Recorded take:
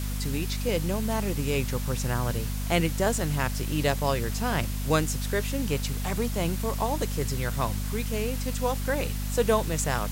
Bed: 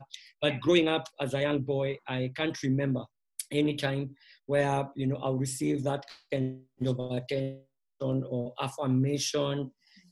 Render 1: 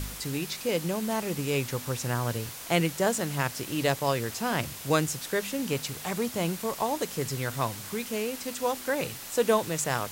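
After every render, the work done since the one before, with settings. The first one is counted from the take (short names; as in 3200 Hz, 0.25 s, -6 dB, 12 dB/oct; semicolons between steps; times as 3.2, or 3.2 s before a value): de-hum 50 Hz, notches 5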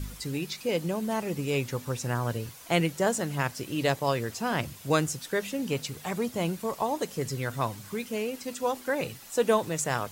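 denoiser 9 dB, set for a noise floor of -41 dBFS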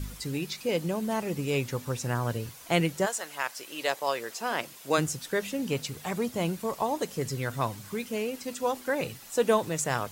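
3.05–4.97 HPF 880 Hz -> 300 Hz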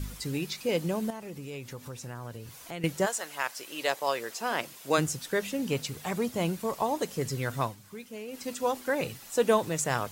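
1.1–2.84 compressor 2.5:1, threshold -42 dBFS; 7.61–8.42 dip -9.5 dB, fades 0.15 s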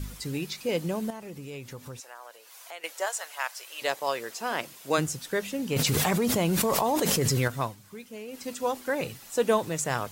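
2–3.82 HPF 570 Hz 24 dB/oct; 5.76–7.48 fast leveller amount 100%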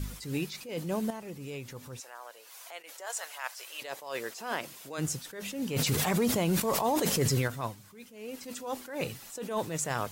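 limiter -18.5 dBFS, peak gain reduction 9 dB; attack slew limiter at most 100 dB/s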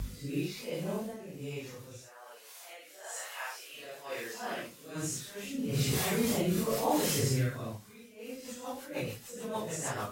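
phase scrambler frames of 0.2 s; rotary speaker horn 1.1 Hz, later 6.7 Hz, at 7.79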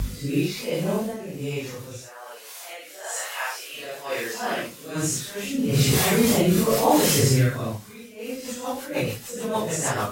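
gain +10.5 dB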